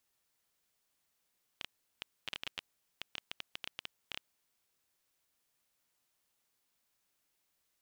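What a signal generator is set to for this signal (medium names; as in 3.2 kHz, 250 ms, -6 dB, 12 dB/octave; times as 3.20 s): random clicks 9.7 per s -21.5 dBFS 2.65 s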